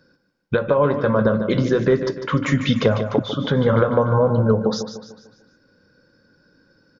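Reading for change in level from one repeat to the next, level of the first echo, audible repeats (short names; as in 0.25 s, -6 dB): -7.0 dB, -9.5 dB, 4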